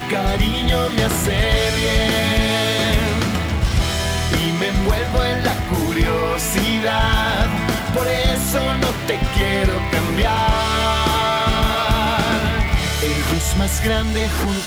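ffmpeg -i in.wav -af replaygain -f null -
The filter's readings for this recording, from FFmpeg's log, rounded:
track_gain = +1.1 dB
track_peak = 0.363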